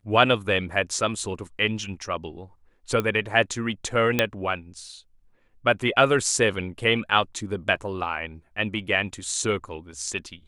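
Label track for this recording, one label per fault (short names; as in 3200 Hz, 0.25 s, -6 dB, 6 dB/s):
3.000000	3.000000	pop -13 dBFS
4.190000	4.190000	pop -5 dBFS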